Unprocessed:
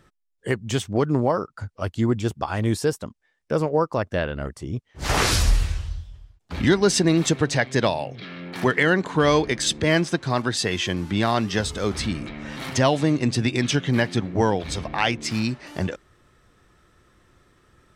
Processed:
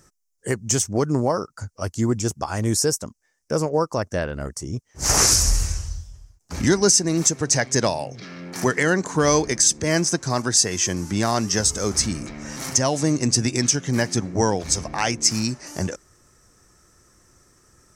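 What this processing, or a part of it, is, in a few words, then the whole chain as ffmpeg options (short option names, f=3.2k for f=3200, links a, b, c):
over-bright horn tweeter: -af "highshelf=f=4.6k:t=q:w=3:g=9.5,alimiter=limit=-5dB:level=0:latency=1:release=320"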